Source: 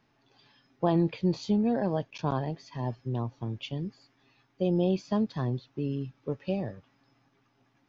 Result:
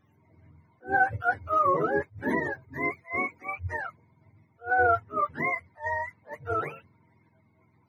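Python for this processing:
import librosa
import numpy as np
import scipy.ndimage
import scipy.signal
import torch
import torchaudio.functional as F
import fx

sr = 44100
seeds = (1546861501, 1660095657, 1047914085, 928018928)

y = fx.octave_mirror(x, sr, pivot_hz=510.0)
y = fx.attack_slew(y, sr, db_per_s=260.0)
y = y * librosa.db_to_amplitude(5.0)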